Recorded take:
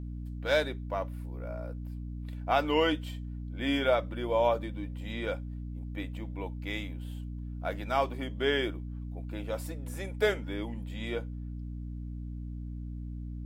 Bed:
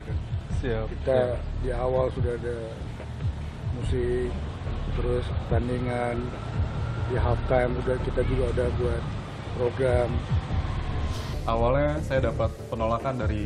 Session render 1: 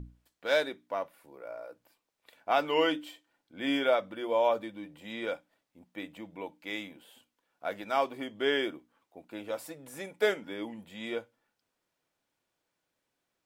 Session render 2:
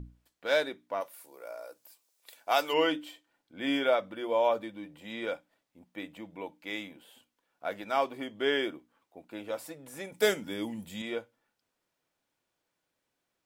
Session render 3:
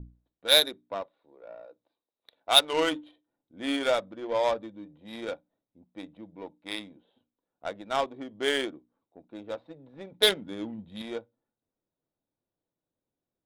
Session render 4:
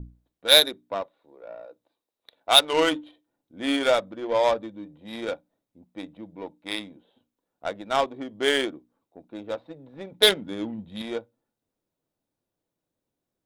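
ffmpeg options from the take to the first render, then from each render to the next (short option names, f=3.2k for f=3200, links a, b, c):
-af "bandreject=f=60:t=h:w=6,bandreject=f=120:t=h:w=6,bandreject=f=180:t=h:w=6,bandreject=f=240:t=h:w=6,bandreject=f=300:t=h:w=6"
-filter_complex "[0:a]asplit=3[a][b][c];[a]afade=t=out:st=1:d=0.02[d];[b]bass=f=250:g=-13,treble=f=4k:g=15,afade=t=in:st=1:d=0.02,afade=t=out:st=2.72:d=0.02[e];[c]afade=t=in:st=2.72:d=0.02[f];[d][e][f]amix=inputs=3:normalize=0,asettb=1/sr,asplit=3[g][h][i];[g]atrim=end=10.124[j];[h]atrim=start=10.12:end=11.02,asetpts=PTS-STARTPTS,afade=t=in:d=0.004:c=qsin,afade=t=out:st=0.896:d=0.004:c=qsin,bass=f=250:g=9,treble=f=4k:g=13[k];[i]atrim=start=11.016[l];[j][k]acrossfade=d=0.004:c1=hsin:c2=qsin[m];[m][l]acrossfade=d=0.004:c1=qsin:c2=hsin"
-af "lowpass=f=3.8k:t=q:w=14,adynamicsmooth=sensitivity=1.5:basefreq=600"
-af "volume=4.5dB,alimiter=limit=-3dB:level=0:latency=1"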